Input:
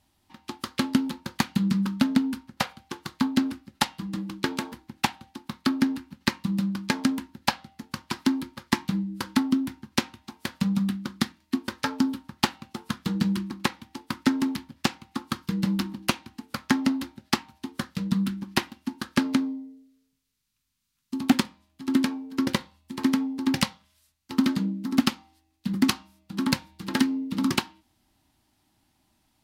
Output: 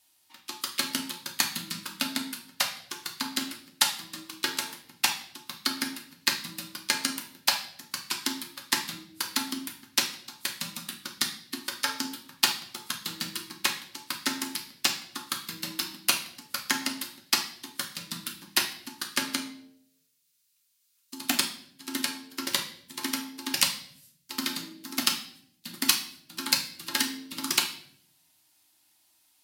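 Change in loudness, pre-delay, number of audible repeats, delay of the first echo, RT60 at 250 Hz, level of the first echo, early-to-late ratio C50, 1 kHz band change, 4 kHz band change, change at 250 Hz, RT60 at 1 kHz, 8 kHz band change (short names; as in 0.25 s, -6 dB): -2.0 dB, 3 ms, none, none, 1.0 s, none, 10.0 dB, -4.0 dB, +5.0 dB, -14.0 dB, 0.55 s, +8.5 dB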